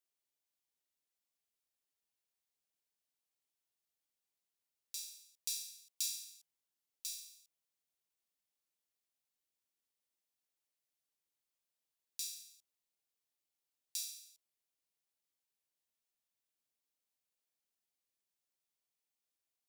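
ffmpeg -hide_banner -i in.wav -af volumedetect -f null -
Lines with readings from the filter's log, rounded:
mean_volume: -53.6 dB
max_volume: -17.2 dB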